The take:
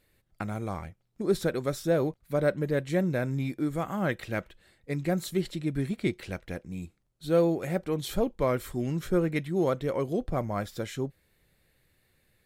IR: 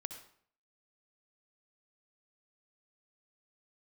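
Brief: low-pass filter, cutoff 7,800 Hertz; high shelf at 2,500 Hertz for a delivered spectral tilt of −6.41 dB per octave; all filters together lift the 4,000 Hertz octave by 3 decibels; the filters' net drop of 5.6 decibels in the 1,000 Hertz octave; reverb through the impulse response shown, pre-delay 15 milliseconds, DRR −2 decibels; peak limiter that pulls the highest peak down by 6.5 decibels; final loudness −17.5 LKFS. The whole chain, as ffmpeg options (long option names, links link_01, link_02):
-filter_complex "[0:a]lowpass=7800,equalizer=frequency=1000:width_type=o:gain=-8,highshelf=frequency=2500:gain=-3.5,equalizer=frequency=4000:width_type=o:gain=7,alimiter=limit=-20.5dB:level=0:latency=1,asplit=2[link_01][link_02];[1:a]atrim=start_sample=2205,adelay=15[link_03];[link_02][link_03]afir=irnorm=-1:irlink=0,volume=4dB[link_04];[link_01][link_04]amix=inputs=2:normalize=0,volume=11dB"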